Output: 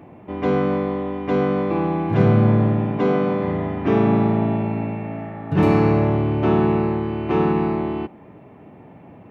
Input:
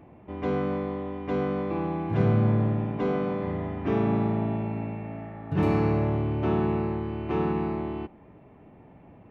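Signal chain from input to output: HPF 98 Hz; gain +8 dB

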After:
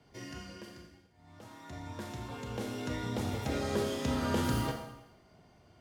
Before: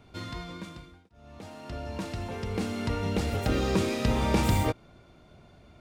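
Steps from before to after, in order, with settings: formant shift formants +5 st; Schroeder reverb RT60 0.88 s, combs from 27 ms, DRR 4 dB; frequency shift +19 Hz; gain -8 dB

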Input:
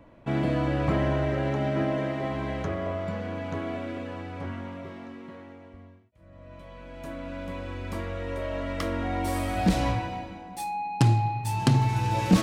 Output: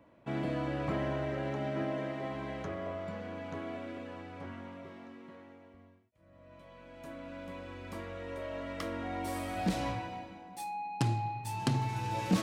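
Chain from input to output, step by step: HPF 140 Hz 6 dB/oct; gain -7 dB

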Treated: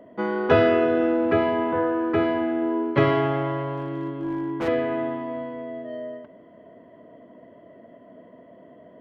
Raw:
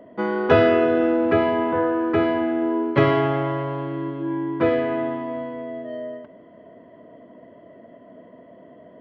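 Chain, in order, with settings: 3.77–4.68 hard clip -21.5 dBFS, distortion -20 dB; gain -2 dB

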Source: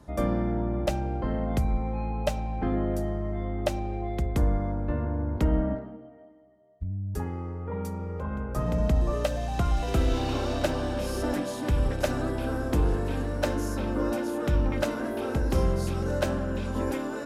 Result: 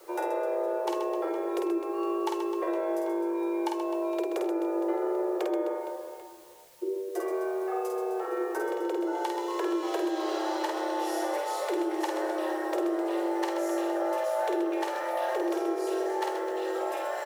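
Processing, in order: 3.07–3.78 comb 1.5 ms, depth 53%; frequency shift +290 Hz; requantised 10-bit, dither triangular; compressor, threshold -29 dBFS, peak gain reduction 11 dB; on a send: reverse bouncing-ball echo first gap 50 ms, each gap 1.6×, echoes 5

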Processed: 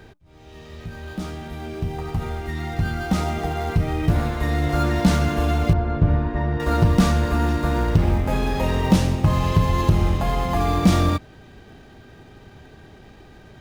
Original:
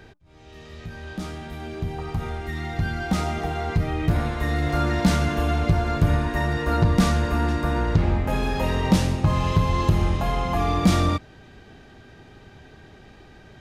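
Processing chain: in parallel at -10.5 dB: sample-rate reducer 2800 Hz; 5.73–6.6 on the sum: tape spacing loss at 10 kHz 35 dB

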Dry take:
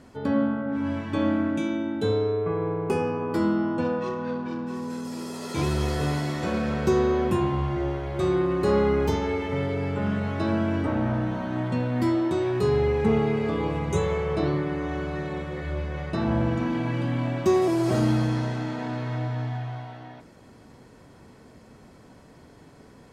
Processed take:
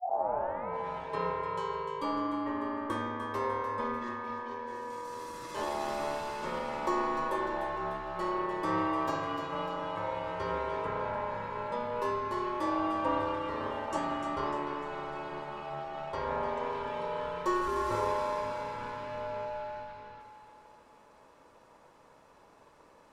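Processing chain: tape start at the beginning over 0.70 s; ring modulator 730 Hz; split-band echo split 580 Hz, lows 0.151 s, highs 0.299 s, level -9 dB; gain -6.5 dB

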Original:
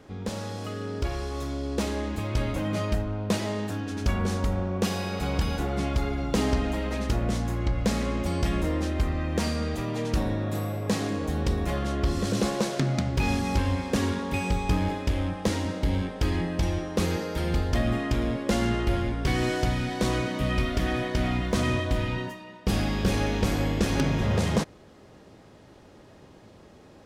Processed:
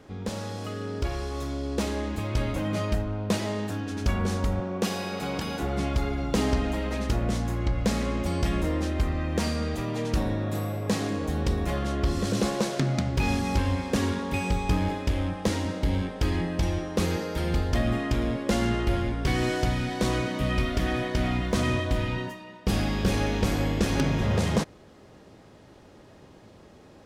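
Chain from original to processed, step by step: 4.6–5.62 HPF 160 Hz 12 dB/oct

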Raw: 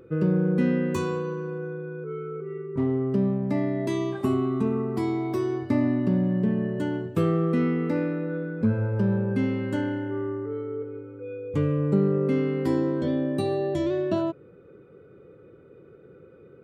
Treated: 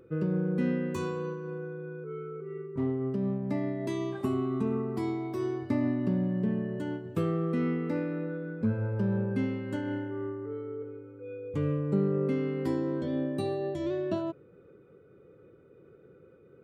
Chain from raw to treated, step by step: noise-modulated level, depth 55%; gain -3.5 dB

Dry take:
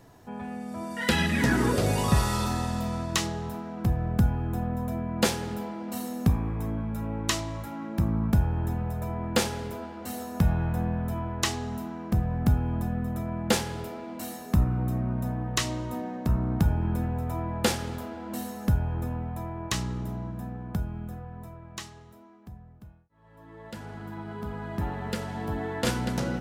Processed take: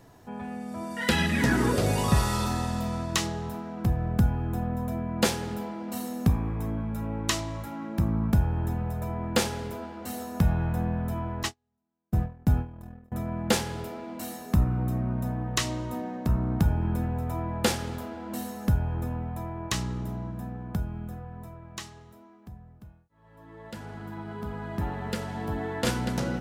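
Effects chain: 11.43–13.12 gate -25 dBFS, range -47 dB

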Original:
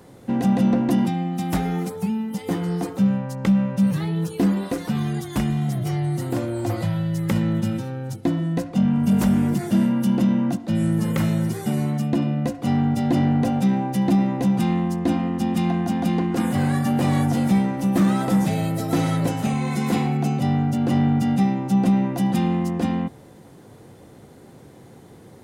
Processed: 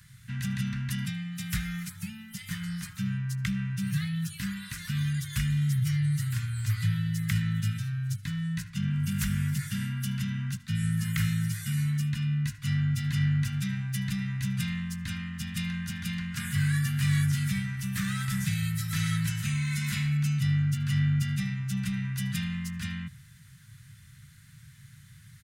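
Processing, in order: elliptic band-stop 140–1600 Hz, stop band 60 dB; echo 77 ms -23.5 dB

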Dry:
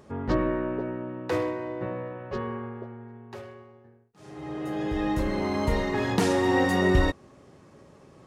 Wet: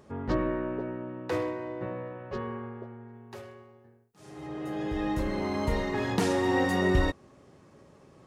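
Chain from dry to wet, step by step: 3.13–4.47 high shelf 6500 Hz +9 dB; gain -3 dB

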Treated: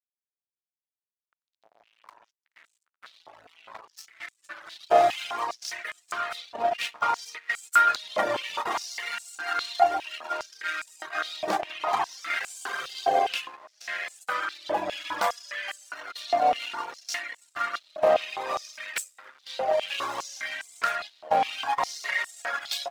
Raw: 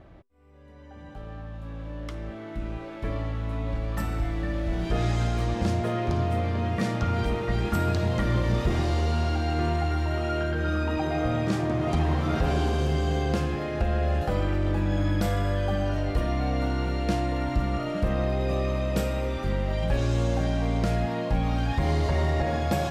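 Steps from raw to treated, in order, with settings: gate -26 dBFS, range -8 dB; backlash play -32.5 dBFS; reverb removal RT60 1.3 s; stepped high-pass 4.9 Hz 690–7800 Hz; gain +7.5 dB

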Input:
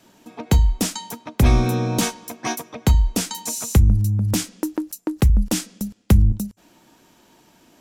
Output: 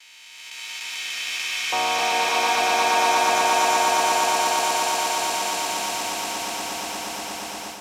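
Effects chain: time blur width 1.31 s; LFO high-pass square 0.29 Hz 790–2400 Hz; on a send: swelling echo 0.118 s, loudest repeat 8, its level -4 dB; on the sum: gate with hold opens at -38 dBFS; bell 5300 Hz +2 dB 0.22 oct; AGC gain up to 6 dB; high shelf 8600 Hz -11 dB

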